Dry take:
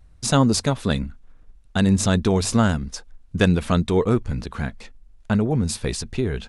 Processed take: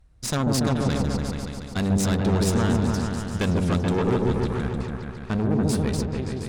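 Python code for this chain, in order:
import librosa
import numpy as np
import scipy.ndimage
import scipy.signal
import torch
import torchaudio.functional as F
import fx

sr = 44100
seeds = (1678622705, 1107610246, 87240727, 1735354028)

y = fx.fade_out_tail(x, sr, length_s=0.59)
y = fx.tube_stage(y, sr, drive_db=20.0, bias=0.8)
y = fx.echo_opening(y, sr, ms=143, hz=750, octaves=1, feedback_pct=70, wet_db=0)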